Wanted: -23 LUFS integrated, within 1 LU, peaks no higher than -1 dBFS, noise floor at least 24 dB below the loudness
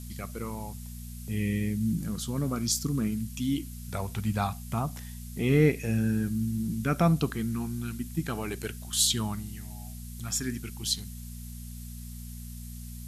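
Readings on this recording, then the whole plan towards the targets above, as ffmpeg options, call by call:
hum 60 Hz; highest harmonic 240 Hz; hum level -39 dBFS; noise floor -41 dBFS; noise floor target -54 dBFS; loudness -29.5 LUFS; peak level -11.5 dBFS; loudness target -23.0 LUFS
-> -af "bandreject=f=60:t=h:w=4,bandreject=f=120:t=h:w=4,bandreject=f=180:t=h:w=4,bandreject=f=240:t=h:w=4"
-af "afftdn=nr=13:nf=-41"
-af "volume=2.11"

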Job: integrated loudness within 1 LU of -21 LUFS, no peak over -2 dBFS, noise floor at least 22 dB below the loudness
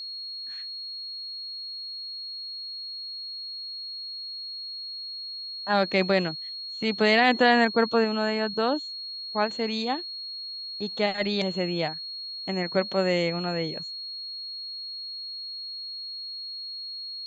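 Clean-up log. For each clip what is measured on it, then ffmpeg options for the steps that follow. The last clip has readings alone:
steady tone 4.3 kHz; tone level -34 dBFS; loudness -28.0 LUFS; peak level -7.5 dBFS; loudness target -21.0 LUFS
-> -af "bandreject=f=4300:w=30"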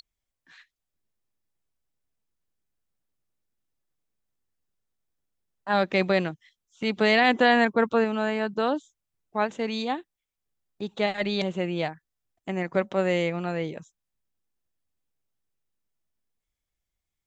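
steady tone not found; loudness -25.5 LUFS; peak level -8.0 dBFS; loudness target -21.0 LUFS
-> -af "volume=1.68"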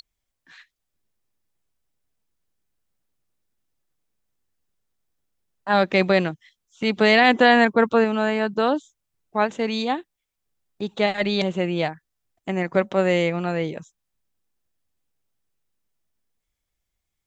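loudness -21.0 LUFS; peak level -3.5 dBFS; noise floor -81 dBFS

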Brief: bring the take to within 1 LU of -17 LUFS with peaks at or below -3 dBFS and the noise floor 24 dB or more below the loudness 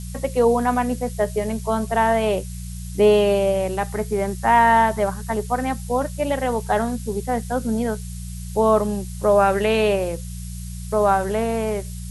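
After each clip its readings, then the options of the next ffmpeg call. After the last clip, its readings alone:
hum 60 Hz; highest harmonic 180 Hz; hum level -30 dBFS; noise floor -32 dBFS; noise floor target -45 dBFS; loudness -21.0 LUFS; peak level -4.5 dBFS; loudness target -17.0 LUFS
-> -af "bandreject=f=60:t=h:w=4,bandreject=f=120:t=h:w=4,bandreject=f=180:t=h:w=4"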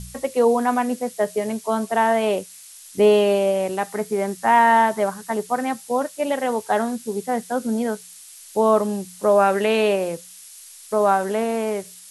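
hum not found; noise floor -43 dBFS; noise floor target -45 dBFS
-> -af "afftdn=nr=6:nf=-43"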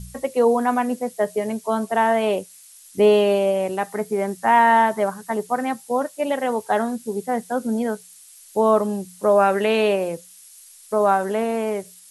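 noise floor -47 dBFS; loudness -21.0 LUFS; peak level -5.0 dBFS; loudness target -17.0 LUFS
-> -af "volume=1.58,alimiter=limit=0.708:level=0:latency=1"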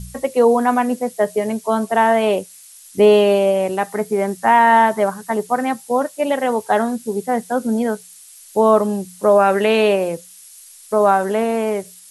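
loudness -17.5 LUFS; peak level -3.0 dBFS; noise floor -43 dBFS

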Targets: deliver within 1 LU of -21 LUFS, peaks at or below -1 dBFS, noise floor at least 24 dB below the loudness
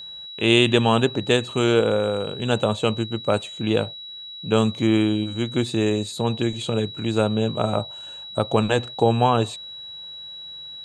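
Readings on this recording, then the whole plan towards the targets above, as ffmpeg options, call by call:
steady tone 3.9 kHz; tone level -35 dBFS; loudness -22.0 LUFS; peak level -2.5 dBFS; loudness target -21.0 LUFS
-> -af "bandreject=f=3900:w=30"
-af "volume=1.12"

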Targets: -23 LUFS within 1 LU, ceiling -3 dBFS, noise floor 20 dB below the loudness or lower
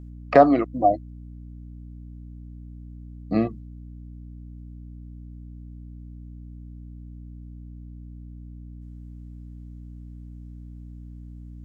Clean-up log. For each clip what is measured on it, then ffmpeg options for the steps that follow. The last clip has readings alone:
hum 60 Hz; highest harmonic 300 Hz; hum level -38 dBFS; loudness -21.0 LUFS; peak level -1.5 dBFS; loudness target -23.0 LUFS
-> -af "bandreject=f=60:t=h:w=6,bandreject=f=120:t=h:w=6,bandreject=f=180:t=h:w=6,bandreject=f=240:t=h:w=6,bandreject=f=300:t=h:w=6"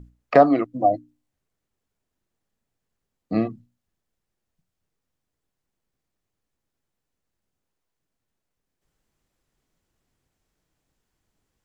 hum not found; loudness -21.0 LUFS; peak level -1.5 dBFS; loudness target -23.0 LUFS
-> -af "volume=0.794"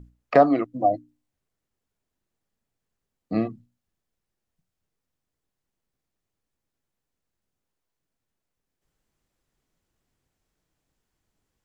loudness -23.0 LUFS; peak level -3.5 dBFS; noise floor -84 dBFS

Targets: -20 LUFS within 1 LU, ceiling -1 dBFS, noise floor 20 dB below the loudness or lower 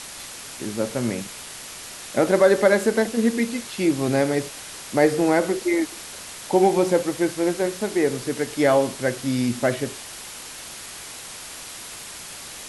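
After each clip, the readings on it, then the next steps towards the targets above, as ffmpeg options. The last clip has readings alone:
noise floor -38 dBFS; noise floor target -42 dBFS; loudness -22.0 LUFS; peak level -4.5 dBFS; loudness target -20.0 LUFS
-> -af "afftdn=nr=6:nf=-38"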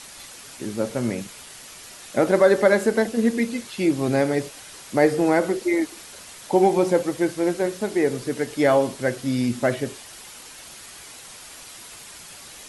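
noise floor -43 dBFS; loudness -22.0 LUFS; peak level -4.5 dBFS; loudness target -20.0 LUFS
-> -af "volume=1.26"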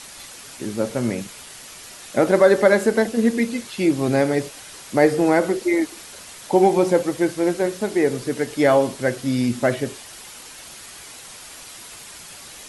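loudness -20.0 LUFS; peak level -2.5 dBFS; noise floor -41 dBFS

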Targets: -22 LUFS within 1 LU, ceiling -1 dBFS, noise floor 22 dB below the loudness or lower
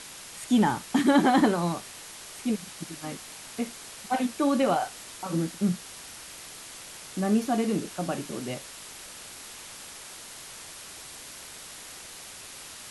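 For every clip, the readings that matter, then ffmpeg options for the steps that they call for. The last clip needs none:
noise floor -44 dBFS; noise floor target -50 dBFS; loudness -27.5 LUFS; peak level -11.0 dBFS; loudness target -22.0 LUFS
-> -af "afftdn=nr=6:nf=-44"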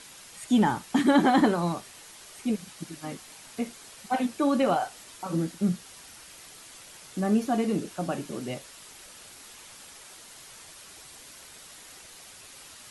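noise floor -49 dBFS; noise floor target -50 dBFS
-> -af "afftdn=nr=6:nf=-49"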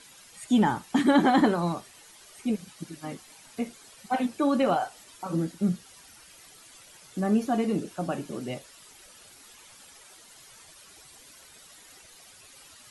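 noise floor -53 dBFS; loudness -27.5 LUFS; peak level -11.5 dBFS; loudness target -22.0 LUFS
-> -af "volume=1.88"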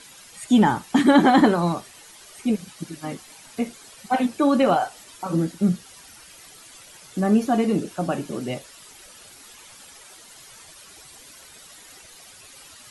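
loudness -22.0 LUFS; peak level -6.0 dBFS; noise floor -47 dBFS

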